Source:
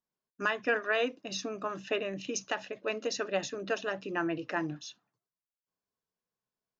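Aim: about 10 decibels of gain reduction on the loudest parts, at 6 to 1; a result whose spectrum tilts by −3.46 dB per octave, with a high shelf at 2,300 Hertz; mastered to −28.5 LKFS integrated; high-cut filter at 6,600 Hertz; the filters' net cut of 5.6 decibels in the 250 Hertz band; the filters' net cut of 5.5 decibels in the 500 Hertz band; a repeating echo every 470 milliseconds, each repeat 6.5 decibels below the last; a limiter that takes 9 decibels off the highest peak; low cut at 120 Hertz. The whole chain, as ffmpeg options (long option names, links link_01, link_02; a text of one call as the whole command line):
ffmpeg -i in.wav -af "highpass=120,lowpass=6600,equalizer=frequency=250:width_type=o:gain=-5.5,equalizer=frequency=500:width_type=o:gain=-5,highshelf=frequency=2300:gain=-6,acompressor=threshold=-38dB:ratio=6,alimiter=level_in=8dB:limit=-24dB:level=0:latency=1,volume=-8dB,aecho=1:1:470|940|1410|1880|2350|2820:0.473|0.222|0.105|0.0491|0.0231|0.0109,volume=16dB" out.wav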